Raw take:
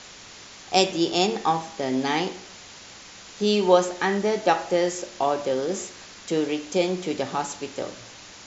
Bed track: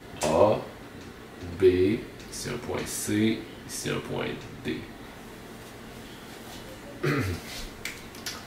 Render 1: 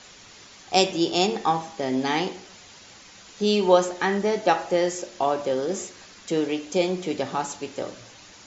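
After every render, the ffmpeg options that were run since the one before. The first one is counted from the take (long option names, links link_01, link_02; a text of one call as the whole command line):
ffmpeg -i in.wav -af "afftdn=noise_reduction=6:noise_floor=-45" out.wav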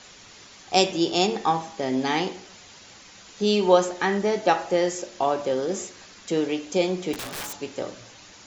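ffmpeg -i in.wav -filter_complex "[0:a]asettb=1/sr,asplit=3[link_01][link_02][link_03];[link_01]atrim=end=7.134[link_04];[link_02]atrim=start=7.13:end=7.57,asetpts=PTS-STARTPTS,afade=type=in:duration=0.004:curve=qsin,afade=type=out:start_time=0.436:duration=0.004:curve=qsin,aeval=exprs='(mod(25.1*val(0)+1,2)-1)/25.1':channel_layout=same[link_05];[link_03]atrim=start=7.566[link_06];[link_04][link_05]acrossfade=duration=0.004:curve1=hsin:curve2=qsin[link_07];[link_07][link_06]acrossfade=duration=0.004:curve1=qsin:curve2=hsin" out.wav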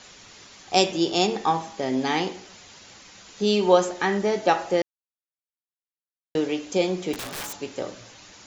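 ffmpeg -i in.wav -filter_complex "[0:a]asplit=3[link_01][link_02][link_03];[link_01]atrim=end=4.82,asetpts=PTS-STARTPTS,afade=type=out:start_time=4.816:duration=0.004:curve=hsin[link_04];[link_02]atrim=start=4.82:end=6.35,asetpts=PTS-STARTPTS,volume=0[link_05];[link_03]atrim=start=6.35,asetpts=PTS-STARTPTS,afade=type=in:duration=0.004:curve=hsin[link_06];[link_04][link_05][link_06]concat=n=3:v=0:a=1" out.wav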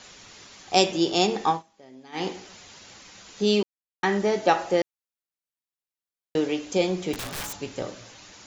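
ffmpeg -i in.wav -filter_complex "[0:a]asettb=1/sr,asplit=3[link_01][link_02][link_03];[link_01]atrim=end=6.424[link_04];[link_02]atrim=start=6.42:end=7.87,asetpts=PTS-STARTPTS,afade=type=in:duration=0.004:curve=qsin,afade=type=out:start_time=1.446:duration=0.004:curve=qsin,asubboost=boost=5:cutoff=190[link_05];[link_03]atrim=start=7.866[link_06];[link_04][link_05]acrossfade=duration=0.004:curve1=hsin:curve2=qsin[link_07];[link_07][link_06]acrossfade=duration=0.004:curve1=qsin:curve2=hsin,asplit=5[link_08][link_09][link_10][link_11][link_12];[link_08]atrim=end=1.63,asetpts=PTS-STARTPTS,afade=type=out:start_time=1.49:duration=0.14:silence=0.0749894[link_13];[link_09]atrim=start=1.63:end=2.12,asetpts=PTS-STARTPTS,volume=-22.5dB[link_14];[link_10]atrim=start=2.12:end=3.63,asetpts=PTS-STARTPTS,afade=type=in:duration=0.14:silence=0.0749894,afade=type=out:start_time=1.506:duration=0.004:curve=hsin[link_15];[link_11]atrim=start=3.63:end=4.03,asetpts=PTS-STARTPTS,volume=0[link_16];[link_12]atrim=start=4.03,asetpts=PTS-STARTPTS,afade=type=in:duration=0.004:curve=hsin[link_17];[link_13][link_14][link_15][link_16][link_17]concat=n=5:v=0:a=1" out.wav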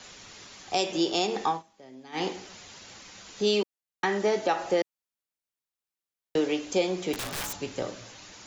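ffmpeg -i in.wav -filter_complex "[0:a]acrossover=split=260|1100|5800[link_01][link_02][link_03][link_04];[link_01]acompressor=threshold=-39dB:ratio=6[link_05];[link_05][link_02][link_03][link_04]amix=inputs=4:normalize=0,alimiter=limit=-15dB:level=0:latency=1:release=171" out.wav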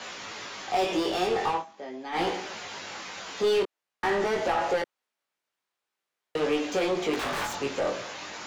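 ffmpeg -i in.wav -filter_complex "[0:a]asplit=2[link_01][link_02];[link_02]highpass=frequency=720:poles=1,volume=25dB,asoftclip=type=tanh:threshold=-14.5dB[link_03];[link_01][link_03]amix=inputs=2:normalize=0,lowpass=frequency=1500:poles=1,volume=-6dB,flanger=delay=17.5:depth=4.6:speed=0.45" out.wav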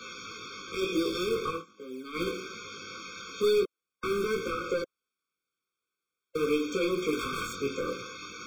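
ffmpeg -i in.wav -filter_complex "[0:a]acrossover=split=360|2600[link_01][link_02][link_03];[link_01]acrusher=samples=22:mix=1:aa=0.000001:lfo=1:lforange=35.2:lforate=1[link_04];[link_04][link_02][link_03]amix=inputs=3:normalize=0,afftfilt=real='re*eq(mod(floor(b*sr/1024/530),2),0)':imag='im*eq(mod(floor(b*sr/1024/530),2),0)':win_size=1024:overlap=0.75" out.wav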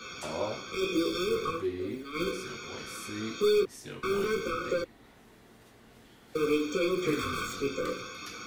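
ffmpeg -i in.wav -i bed.wav -filter_complex "[1:a]volume=-13dB[link_01];[0:a][link_01]amix=inputs=2:normalize=0" out.wav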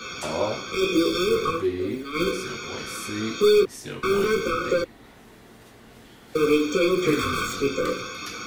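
ffmpeg -i in.wav -af "volume=7.5dB" out.wav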